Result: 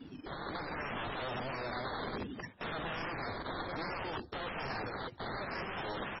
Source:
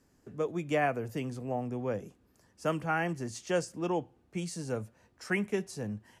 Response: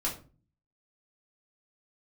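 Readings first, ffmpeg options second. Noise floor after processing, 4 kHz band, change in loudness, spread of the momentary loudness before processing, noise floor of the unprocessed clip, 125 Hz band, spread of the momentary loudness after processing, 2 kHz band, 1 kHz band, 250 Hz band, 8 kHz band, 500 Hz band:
−52 dBFS, +3.5 dB, −5.5 dB, 9 LU, −68 dBFS, −8.0 dB, 3 LU, −1.5 dB, −2.0 dB, −8.5 dB, below −25 dB, −8.0 dB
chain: -filter_complex "[0:a]aecho=1:1:141:0.0668,areverse,acompressor=threshold=-40dB:ratio=4,areverse,afftdn=noise_reduction=22:noise_floor=-57,asplit=2[link_01][link_02];[link_02]highpass=frequency=720:poles=1,volume=34dB,asoftclip=type=tanh:threshold=-31.5dB[link_03];[link_01][link_03]amix=inputs=2:normalize=0,lowpass=frequency=5200:poles=1,volume=-6dB,aeval=exprs='(mod(178*val(0)+1,2)-1)/178':channel_layout=same,dynaudnorm=framelen=380:gausssize=3:maxgain=4dB,asuperstop=centerf=4200:order=12:qfactor=0.65,acrusher=samples=13:mix=1:aa=0.000001:lfo=1:lforange=7.8:lforate=0.63,asoftclip=type=tanh:threshold=-36dB,volume=9.5dB" -ar 24000 -c:a libmp3lame -b:a 16k

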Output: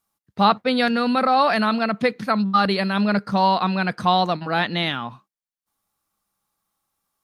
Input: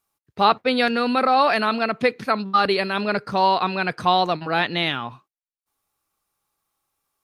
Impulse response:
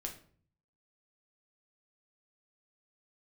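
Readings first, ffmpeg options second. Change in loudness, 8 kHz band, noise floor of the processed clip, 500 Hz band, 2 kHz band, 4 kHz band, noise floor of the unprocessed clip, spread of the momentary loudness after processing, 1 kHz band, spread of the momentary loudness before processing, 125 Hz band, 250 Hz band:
+0.5 dB, can't be measured, below −85 dBFS, −1.0 dB, −1.0 dB, −0.5 dB, below −85 dBFS, 5 LU, 0.0 dB, 6 LU, +5.5 dB, +4.5 dB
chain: -af "equalizer=frequency=200:width_type=o:width=0.33:gain=9,equalizer=frequency=400:width_type=o:width=0.33:gain=-5,equalizer=frequency=2500:width_type=o:width=0.33:gain=-4"

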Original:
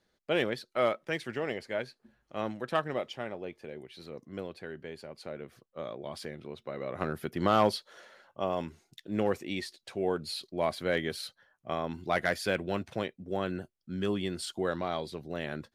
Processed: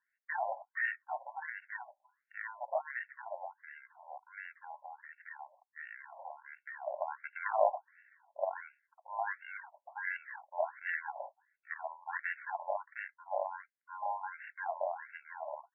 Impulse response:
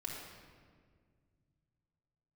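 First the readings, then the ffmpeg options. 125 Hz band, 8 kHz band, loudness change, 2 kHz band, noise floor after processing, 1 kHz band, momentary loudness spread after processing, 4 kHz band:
below −40 dB, below −30 dB, −6.0 dB, −1.0 dB, below −85 dBFS, −2.0 dB, 14 LU, below −25 dB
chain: -af "acrusher=samples=36:mix=1:aa=0.000001,afftfilt=real='re*between(b*sr/1024,740*pow(2000/740,0.5+0.5*sin(2*PI*1.4*pts/sr))/1.41,740*pow(2000/740,0.5+0.5*sin(2*PI*1.4*pts/sr))*1.41)':imag='im*between(b*sr/1024,740*pow(2000/740,0.5+0.5*sin(2*PI*1.4*pts/sr))/1.41,740*pow(2000/740,0.5+0.5*sin(2*PI*1.4*pts/sr))*1.41)':win_size=1024:overlap=0.75,volume=3dB"

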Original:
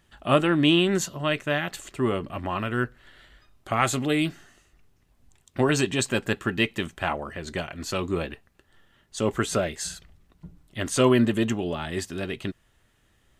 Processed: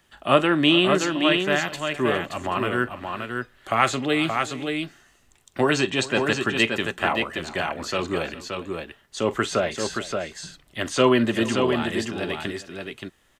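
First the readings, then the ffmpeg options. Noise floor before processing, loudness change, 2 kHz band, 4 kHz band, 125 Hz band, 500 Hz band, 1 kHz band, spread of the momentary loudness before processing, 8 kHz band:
−65 dBFS, +2.5 dB, +5.0 dB, +5.0 dB, −2.0 dB, +3.0 dB, +5.0 dB, 14 LU, −1.5 dB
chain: -filter_complex "[0:a]lowshelf=frequency=220:gain=-10,acrossover=split=150|760|6300[link_01][link_02][link_03][link_04];[link_04]acompressor=threshold=-53dB:ratio=6[link_05];[link_01][link_02][link_03][link_05]amix=inputs=4:normalize=0,aecho=1:1:44|410|575:0.133|0.126|0.562,volume=4dB"

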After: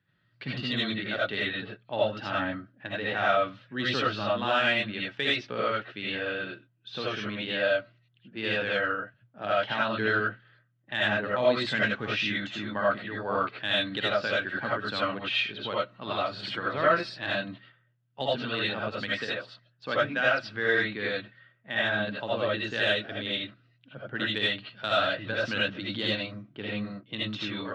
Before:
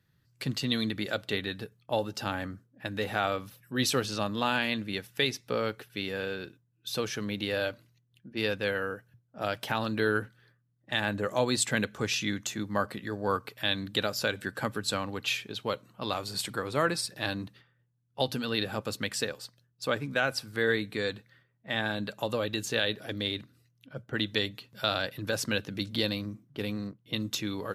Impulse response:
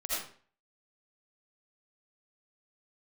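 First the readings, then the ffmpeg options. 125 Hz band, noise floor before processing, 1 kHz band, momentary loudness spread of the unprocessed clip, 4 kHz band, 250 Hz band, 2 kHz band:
−2.0 dB, −71 dBFS, +4.0 dB, 9 LU, +1.5 dB, −1.0 dB, +5.0 dB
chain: -filter_complex "[0:a]highpass=100,equalizer=frequency=500:width_type=q:width=4:gain=-3,equalizer=frequency=1600:width_type=q:width=4:gain=5,equalizer=frequency=3100:width_type=q:width=4:gain=3,lowpass=frequency=3600:width=0.5412,lowpass=frequency=3600:width=1.3066,acontrast=86[link_01];[1:a]atrim=start_sample=2205,afade=type=out:start_time=0.15:duration=0.01,atrim=end_sample=7056[link_02];[link_01][link_02]afir=irnorm=-1:irlink=0,volume=-7dB"

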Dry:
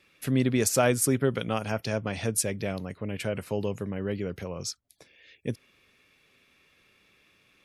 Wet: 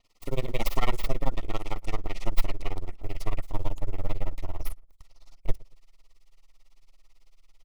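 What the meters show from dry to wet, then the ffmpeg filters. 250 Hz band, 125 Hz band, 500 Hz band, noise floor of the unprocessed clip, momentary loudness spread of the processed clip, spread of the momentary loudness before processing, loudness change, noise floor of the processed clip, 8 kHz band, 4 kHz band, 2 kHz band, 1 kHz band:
−12.0 dB, −4.5 dB, −9.5 dB, −65 dBFS, 9 LU, 14 LU, −7.0 dB, −60 dBFS, −19.0 dB, −5.0 dB, −7.0 dB, −2.0 dB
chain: -filter_complex "[0:a]aeval=exprs='abs(val(0))':channel_layout=same,acrusher=bits=7:mode=log:mix=0:aa=0.000001,tremolo=f=18:d=0.97,asubboost=boost=9:cutoff=63,asuperstop=centerf=1600:order=20:qfactor=4.1,asplit=2[link_01][link_02];[link_02]adelay=115,lowpass=frequency=1200:poles=1,volume=-23.5dB,asplit=2[link_03][link_04];[link_04]adelay=115,lowpass=frequency=1200:poles=1,volume=0.35[link_05];[link_03][link_05]amix=inputs=2:normalize=0[link_06];[link_01][link_06]amix=inputs=2:normalize=0,adynamicequalizer=threshold=0.00126:dfrequency=8000:dqfactor=0.7:tfrequency=8000:tqfactor=0.7:attack=5:release=100:ratio=0.375:range=2:mode=cutabove:tftype=highshelf"

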